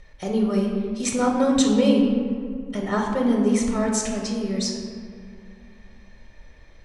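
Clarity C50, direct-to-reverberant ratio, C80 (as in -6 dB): 2.5 dB, -1.0 dB, 4.5 dB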